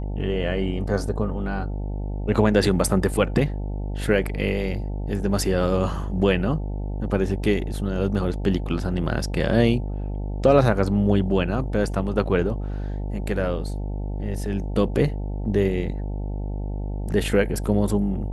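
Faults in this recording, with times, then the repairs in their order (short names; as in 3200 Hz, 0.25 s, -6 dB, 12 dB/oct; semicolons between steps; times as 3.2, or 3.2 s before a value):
buzz 50 Hz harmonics 18 -28 dBFS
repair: de-hum 50 Hz, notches 18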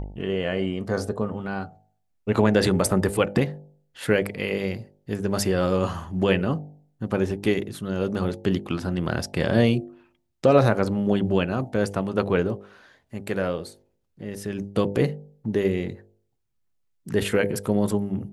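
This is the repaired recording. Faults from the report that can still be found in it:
none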